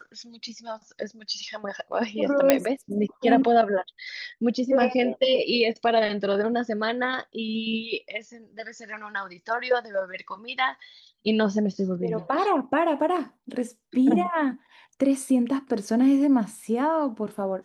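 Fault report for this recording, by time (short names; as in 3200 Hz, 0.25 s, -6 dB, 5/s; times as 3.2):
2.5 pop -3 dBFS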